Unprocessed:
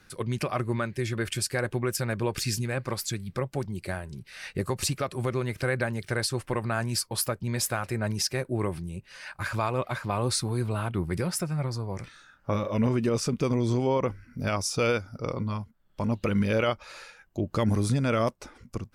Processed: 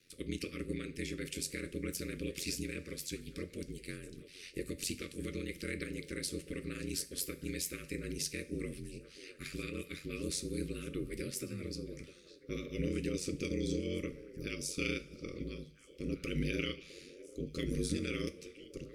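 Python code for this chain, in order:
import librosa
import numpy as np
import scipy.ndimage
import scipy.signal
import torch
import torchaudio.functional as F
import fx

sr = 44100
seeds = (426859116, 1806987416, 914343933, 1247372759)

y = fx.spec_clip(x, sr, under_db=12)
y = scipy.signal.sosfilt(scipy.signal.cheby1(4, 1.0, [540.0, 1200.0], 'bandstop', fs=sr, output='sos'), y)
y = fx.band_shelf(y, sr, hz=1000.0, db=-15.0, octaves=1.7)
y = y * np.sin(2.0 * np.pi * 45.0 * np.arange(len(y)) / sr)
y = fx.hum_notches(y, sr, base_hz=50, count=3)
y = fx.echo_stepped(y, sr, ms=653, hz=490.0, octaves=1.4, feedback_pct=70, wet_db=-11.5)
y = fx.rev_double_slope(y, sr, seeds[0], early_s=0.33, late_s=2.2, knee_db=-21, drr_db=9.0)
y = F.gain(torch.from_numpy(y), -6.0).numpy()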